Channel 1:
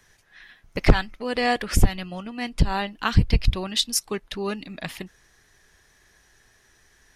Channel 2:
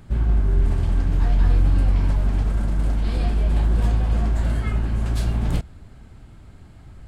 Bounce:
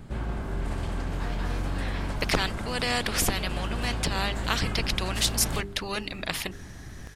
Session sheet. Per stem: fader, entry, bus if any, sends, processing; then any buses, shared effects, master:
-4.0 dB, 1.45 s, no send, none
-11.5 dB, 0.00 s, no send, bass shelf 280 Hz +9.5 dB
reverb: none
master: hum notches 50/100/150/200/250/300/350/400 Hz; spectrum-flattening compressor 2:1

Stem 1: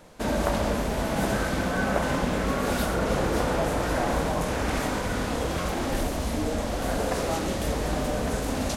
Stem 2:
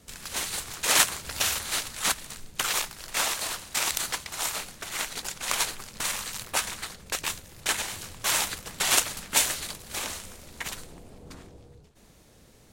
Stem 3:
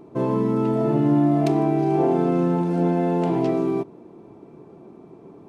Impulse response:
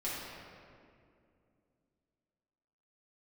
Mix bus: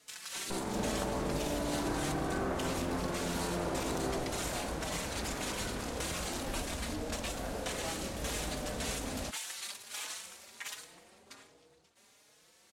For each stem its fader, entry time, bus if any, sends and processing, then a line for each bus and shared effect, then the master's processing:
-12.5 dB, 0.55 s, no bus, no send, gain riding
+1.0 dB, 0.00 s, bus A, send -18.5 dB, high-pass 1.2 kHz 6 dB/octave; compression 12:1, threshold -31 dBFS, peak gain reduction 16 dB; endless flanger 4.3 ms +1.3 Hz
-9.0 dB, 0.35 s, bus A, send -6.5 dB, compression, threshold -28 dBFS, peak gain reduction 13 dB; Chebyshev shaper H 4 -6 dB, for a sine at -19 dBFS
bus A: 0.0 dB, Bessel low-pass 11 kHz, order 2; peak limiter -30 dBFS, peak gain reduction 10.5 dB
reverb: on, RT60 2.4 s, pre-delay 4 ms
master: none

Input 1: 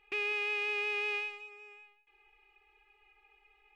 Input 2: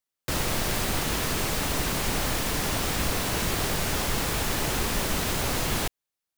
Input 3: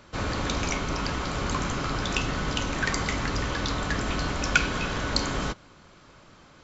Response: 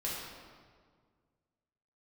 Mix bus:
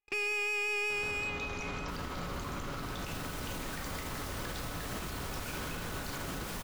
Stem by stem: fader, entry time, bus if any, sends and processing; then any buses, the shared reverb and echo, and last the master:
+1.0 dB, 0.00 s, no send, gate with hold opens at -56 dBFS; waveshaping leveller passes 3
2.73 s -23 dB -> 3.35 s -13 dB, 1.60 s, no send, treble shelf 6.4 kHz +8 dB
-3.0 dB, 0.90 s, send -7.5 dB, compressor with a negative ratio -37 dBFS, ratio -1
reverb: on, RT60 1.8 s, pre-delay 4 ms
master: treble shelf 5.9 kHz -6 dB; peak limiter -29 dBFS, peak gain reduction 8.5 dB

